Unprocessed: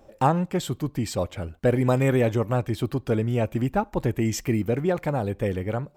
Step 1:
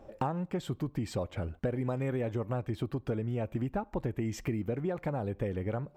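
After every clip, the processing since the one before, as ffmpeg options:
-af "highshelf=f=3700:g=-11.5,acompressor=threshold=0.0282:ratio=6,volume=1.12"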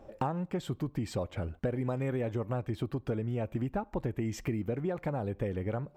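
-af anull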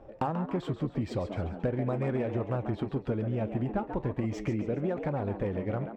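-filter_complex "[0:a]asplit=6[s0][s1][s2][s3][s4][s5];[s1]adelay=137,afreqshift=94,volume=0.355[s6];[s2]adelay=274,afreqshift=188,volume=0.166[s7];[s3]adelay=411,afreqshift=282,volume=0.0785[s8];[s4]adelay=548,afreqshift=376,volume=0.0367[s9];[s5]adelay=685,afreqshift=470,volume=0.0174[s10];[s0][s6][s7][s8][s9][s10]amix=inputs=6:normalize=0,adynamicsmooth=sensitivity=8:basefreq=3600,flanger=delay=2:depth=8.5:regen=-78:speed=0.39:shape=triangular,volume=2"

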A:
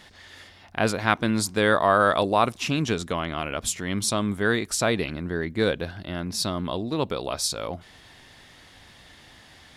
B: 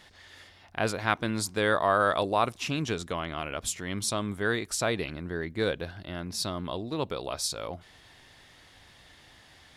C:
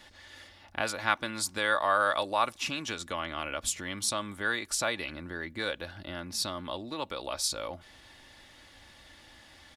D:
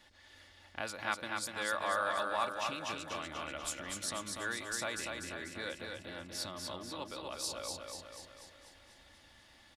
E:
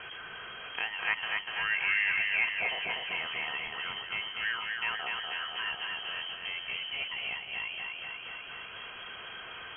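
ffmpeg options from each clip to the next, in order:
-af "equalizer=f=220:t=o:w=0.66:g=-3.5,volume=0.596"
-filter_complex "[0:a]aecho=1:1:3.5:0.44,acrossover=split=680|880[s0][s1][s2];[s0]acompressor=threshold=0.01:ratio=4[s3];[s3][s1][s2]amix=inputs=3:normalize=0"
-af "aecho=1:1:244|488|732|976|1220|1464|1708|1952:0.631|0.36|0.205|0.117|0.0666|0.038|0.0216|0.0123,volume=0.376"
-af "aeval=exprs='val(0)+0.5*0.01*sgn(val(0))':c=same,lowpass=f=2800:t=q:w=0.5098,lowpass=f=2800:t=q:w=0.6013,lowpass=f=2800:t=q:w=0.9,lowpass=f=2800:t=q:w=2.563,afreqshift=-3300,volume=1.5"

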